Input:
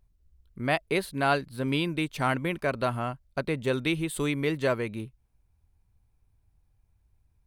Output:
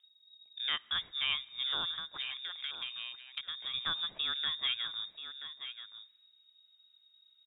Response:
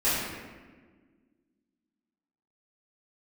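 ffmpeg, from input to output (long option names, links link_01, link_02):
-filter_complex "[0:a]lowpass=frequency=3200:width_type=q:width=0.5098,lowpass=frequency=3200:width_type=q:width=0.6013,lowpass=frequency=3200:width_type=q:width=0.9,lowpass=frequency=3200:width_type=q:width=2.563,afreqshift=-3800,asplit=2[link_01][link_02];[1:a]atrim=start_sample=2205[link_03];[link_02][link_03]afir=irnorm=-1:irlink=0,volume=-36.5dB[link_04];[link_01][link_04]amix=inputs=2:normalize=0,asplit=3[link_05][link_06][link_07];[link_05]afade=type=out:start_time=1.93:duration=0.02[link_08];[link_06]acompressor=threshold=-33dB:ratio=6,afade=type=in:start_time=1.93:duration=0.02,afade=type=out:start_time=3.73:duration=0.02[link_09];[link_07]afade=type=in:start_time=3.73:duration=0.02[link_10];[link_08][link_09][link_10]amix=inputs=3:normalize=0,aecho=1:1:981:0.168,acrossover=split=190[link_11][link_12];[link_12]acompressor=threshold=-45dB:ratio=1.5[link_13];[link_11][link_13]amix=inputs=2:normalize=0"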